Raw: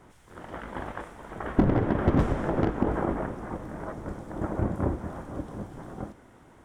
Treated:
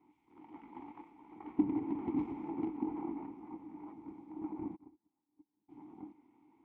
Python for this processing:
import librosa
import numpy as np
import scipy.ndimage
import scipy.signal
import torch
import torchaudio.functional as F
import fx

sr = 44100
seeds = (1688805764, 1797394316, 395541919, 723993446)

y = np.where(x < 0.0, 10.0 ** (-3.0 / 20.0) * x, x)
y = fx.vowel_filter(y, sr, vowel='u')
y = fx.upward_expand(y, sr, threshold_db=-47.0, expansion=2.5, at=(4.75, 5.68), fade=0.02)
y = F.gain(torch.from_numpy(y), -1.0).numpy()